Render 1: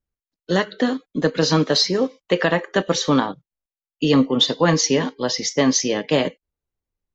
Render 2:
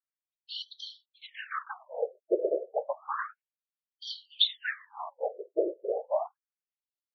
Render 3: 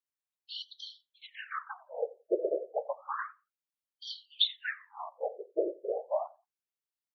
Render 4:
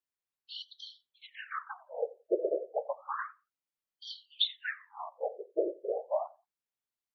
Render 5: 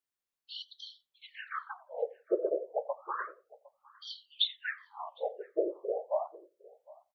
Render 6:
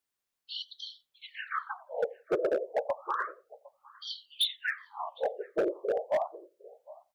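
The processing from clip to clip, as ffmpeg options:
-af "afftfilt=real='hypot(re,im)*cos(2*PI*random(0))':imag='hypot(re,im)*sin(2*PI*random(1))':win_size=512:overlap=0.75,afftfilt=real='re*between(b*sr/1024,460*pow(4400/460,0.5+0.5*sin(2*PI*0.31*pts/sr))/1.41,460*pow(4400/460,0.5+0.5*sin(2*PI*0.31*pts/sr))*1.41)':imag='im*between(b*sr/1024,460*pow(4400/460,0.5+0.5*sin(2*PI*0.31*pts/sr))/1.41,460*pow(4400/460,0.5+0.5*sin(2*PI*0.31*pts/sr))*1.41)':win_size=1024:overlap=0.75"
-filter_complex "[0:a]asplit=2[s0][s1];[s1]adelay=87,lowpass=f=1600:p=1,volume=0.0891,asplit=2[s2][s3];[s3]adelay=87,lowpass=f=1600:p=1,volume=0.23[s4];[s0][s2][s4]amix=inputs=3:normalize=0,volume=0.75"
-af "highshelf=f=4200:g=-5"
-filter_complex "[0:a]asplit=2[s0][s1];[s1]adelay=758,volume=0.0794,highshelf=f=4000:g=-17.1[s2];[s0][s2]amix=inputs=2:normalize=0"
-af "asoftclip=type=hard:threshold=0.0447,volume=1.68"

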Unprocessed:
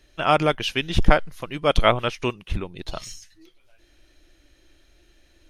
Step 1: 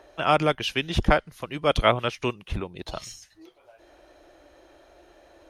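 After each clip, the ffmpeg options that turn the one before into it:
-filter_complex "[0:a]highpass=40,acrossover=split=580|890[s0][s1][s2];[s1]acompressor=mode=upward:threshold=0.0224:ratio=2.5[s3];[s0][s3][s2]amix=inputs=3:normalize=0,volume=0.794"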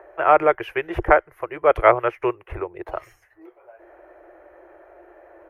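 -af "firequalizer=gain_entry='entry(110,0);entry(230,-23);entry(340,11);entry(2000,9);entry(3700,-21);entry(7700,-16);entry(12000,-1)':delay=0.05:min_phase=1,volume=0.631"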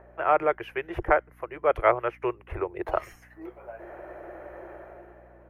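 -af "dynaudnorm=f=100:g=13:m=4.47,aeval=exprs='val(0)+0.00398*(sin(2*PI*60*n/s)+sin(2*PI*2*60*n/s)/2+sin(2*PI*3*60*n/s)/3+sin(2*PI*4*60*n/s)/4+sin(2*PI*5*60*n/s)/5)':c=same,volume=0.447"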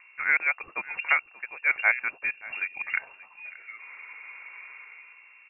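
-af "lowpass=f=2400:t=q:w=0.5098,lowpass=f=2400:t=q:w=0.6013,lowpass=f=2400:t=q:w=0.9,lowpass=f=2400:t=q:w=2.563,afreqshift=-2800,aecho=1:1:581:0.106,volume=0.794"

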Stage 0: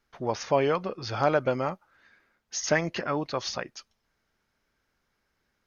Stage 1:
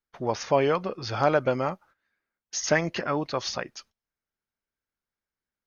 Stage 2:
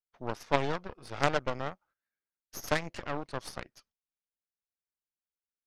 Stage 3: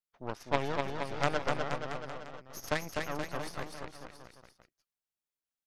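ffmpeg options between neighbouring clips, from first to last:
-af "agate=range=0.112:threshold=0.002:ratio=16:detection=peak,volume=1.19"
-af "aeval=exprs='0.398*(cos(1*acos(clip(val(0)/0.398,-1,1)))-cos(1*PI/2))+0.112*(cos(3*acos(clip(val(0)/0.398,-1,1)))-cos(3*PI/2))+0.0158*(cos(6*acos(clip(val(0)/0.398,-1,1)))-cos(6*PI/2))+0.0316*(cos(8*acos(clip(val(0)/0.398,-1,1)))-cos(8*PI/2))':c=same"
-af "aecho=1:1:250|475|677.5|859.8|1024:0.631|0.398|0.251|0.158|0.1,volume=0.708"

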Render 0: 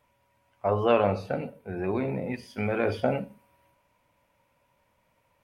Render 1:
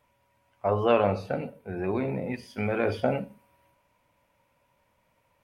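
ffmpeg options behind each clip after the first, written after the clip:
-af anull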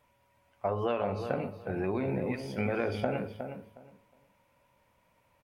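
-filter_complex "[0:a]acompressor=threshold=0.0447:ratio=6,asplit=2[s0][s1];[s1]adelay=363,lowpass=f=2500:p=1,volume=0.398,asplit=2[s2][s3];[s3]adelay=363,lowpass=f=2500:p=1,volume=0.2,asplit=2[s4][s5];[s5]adelay=363,lowpass=f=2500:p=1,volume=0.2[s6];[s0][s2][s4][s6]amix=inputs=4:normalize=0"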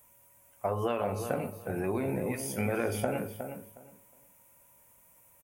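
-filter_complex "[0:a]asplit=2[s0][s1];[s1]adelay=18,volume=0.224[s2];[s0][s2]amix=inputs=2:normalize=0,aexciter=amount=9.6:drive=6.1:freq=6500"

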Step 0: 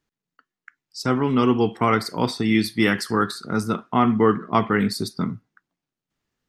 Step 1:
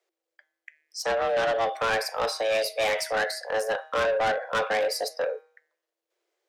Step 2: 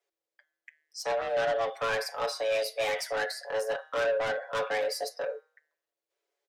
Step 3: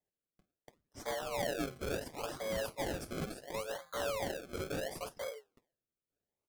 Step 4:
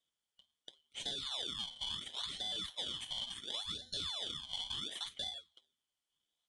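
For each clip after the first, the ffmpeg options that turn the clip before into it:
-af "bandreject=f=152.7:t=h:w=4,bandreject=f=305.4:t=h:w=4,bandreject=f=458.1:t=h:w=4,bandreject=f=610.8:t=h:w=4,bandreject=f=763.5:t=h:w=4,bandreject=f=916.2:t=h:w=4,bandreject=f=1068.9:t=h:w=4,bandreject=f=1221.6:t=h:w=4,bandreject=f=1374.3:t=h:w=4,bandreject=f=1527:t=h:w=4,bandreject=f=1679.7:t=h:w=4,bandreject=f=1832.4:t=h:w=4,bandreject=f=1985.1:t=h:w=4,bandreject=f=2137.8:t=h:w=4,bandreject=f=2290.5:t=h:w=4,bandreject=f=2443.2:t=h:w=4,bandreject=f=2595.9:t=h:w=4,bandreject=f=2748.6:t=h:w=4,bandreject=f=2901.3:t=h:w=4,bandreject=f=3054:t=h:w=4,bandreject=f=3206.7:t=h:w=4,bandreject=f=3359.4:t=h:w=4,bandreject=f=3512.1:t=h:w=4,afreqshift=330,asoftclip=type=tanh:threshold=0.0891"
-af "aecho=1:1:7.1:0.7,volume=0.473"
-filter_complex "[0:a]equalizer=f=3200:t=o:w=0.98:g=5,flanger=delay=2.9:depth=5.2:regen=73:speed=0.62:shape=sinusoidal,acrossover=split=320|6400[s0][s1][s2];[s1]acrusher=samples=32:mix=1:aa=0.000001:lfo=1:lforange=32:lforate=0.71[s3];[s0][s3][s2]amix=inputs=3:normalize=0,volume=0.631"
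-af "afftfilt=real='real(if(lt(b,272),68*(eq(floor(b/68),0)*1+eq(floor(b/68),1)*3+eq(floor(b/68),2)*0+eq(floor(b/68),3)*2)+mod(b,68),b),0)':imag='imag(if(lt(b,272),68*(eq(floor(b/68),0)*1+eq(floor(b/68),1)*3+eq(floor(b/68),2)*0+eq(floor(b/68),3)*2)+mod(b,68),b),0)':win_size=2048:overlap=0.75,acompressor=threshold=0.00708:ratio=6,aresample=22050,aresample=44100,volume=1.78"

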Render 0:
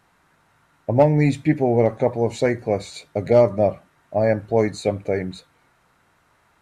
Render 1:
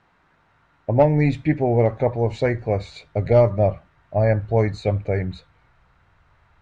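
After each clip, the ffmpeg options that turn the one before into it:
-af "lowpass=3800,asubboost=boost=7:cutoff=95"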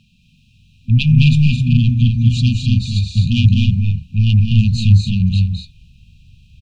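-af "aeval=exprs='0.596*sin(PI/2*3.16*val(0)/0.596)':c=same,afftfilt=real='re*(1-between(b*sr/4096,250,2400))':imag='im*(1-between(b*sr/4096,250,2400))':win_size=4096:overlap=0.75,aecho=1:1:212.8|253.6:0.562|0.501,volume=0.891"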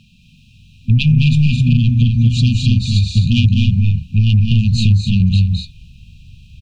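-af "acompressor=threshold=0.2:ratio=6,volume=1.88"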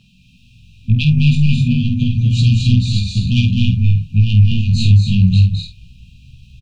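-filter_complex "[0:a]flanger=delay=15.5:depth=5.8:speed=0.31,asplit=2[s0][s1];[s1]adelay=49,volume=0.398[s2];[s0][s2]amix=inputs=2:normalize=0,volume=1.19"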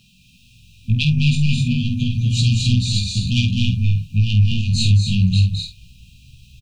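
-af "crystalizer=i=3:c=0,volume=0.596"

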